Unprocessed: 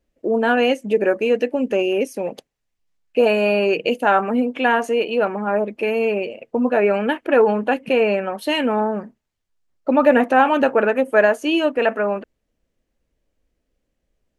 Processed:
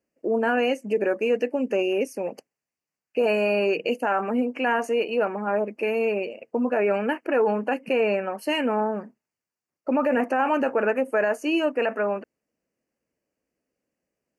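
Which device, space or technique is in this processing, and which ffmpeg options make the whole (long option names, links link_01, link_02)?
PA system with an anti-feedback notch: -af "highpass=170,asuperstop=centerf=3600:order=8:qfactor=2.6,alimiter=limit=-10dB:level=0:latency=1:release=24,volume=-4dB"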